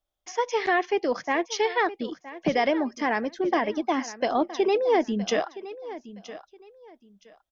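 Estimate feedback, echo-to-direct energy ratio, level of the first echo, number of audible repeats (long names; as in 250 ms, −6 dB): 23%, −15.5 dB, −15.5 dB, 2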